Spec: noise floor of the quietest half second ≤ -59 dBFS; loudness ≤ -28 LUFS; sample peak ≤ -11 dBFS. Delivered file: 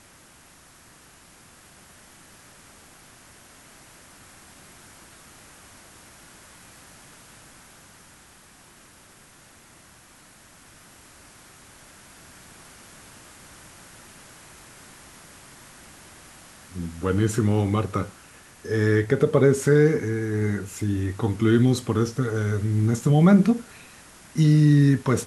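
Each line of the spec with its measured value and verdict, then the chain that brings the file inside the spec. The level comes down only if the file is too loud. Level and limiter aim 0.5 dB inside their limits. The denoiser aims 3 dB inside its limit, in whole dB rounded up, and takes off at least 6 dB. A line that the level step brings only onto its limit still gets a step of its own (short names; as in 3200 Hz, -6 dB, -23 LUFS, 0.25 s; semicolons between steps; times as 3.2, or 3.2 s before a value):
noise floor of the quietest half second -52 dBFS: fail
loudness -21.5 LUFS: fail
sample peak -6.5 dBFS: fail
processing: denoiser 6 dB, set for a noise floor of -52 dBFS; gain -7 dB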